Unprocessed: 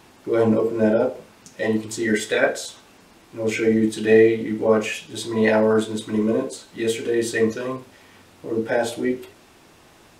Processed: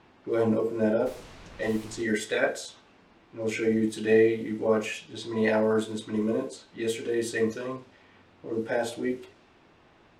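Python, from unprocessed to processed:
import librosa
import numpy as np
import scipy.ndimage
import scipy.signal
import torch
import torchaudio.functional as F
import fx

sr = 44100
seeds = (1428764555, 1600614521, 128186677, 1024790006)

y = fx.dmg_noise_colour(x, sr, seeds[0], colour='pink', level_db=-40.0, at=(1.05, 2.01), fade=0.02)
y = fx.env_lowpass(y, sr, base_hz=3000.0, full_db=-17.5)
y = y * 10.0 ** (-6.5 / 20.0)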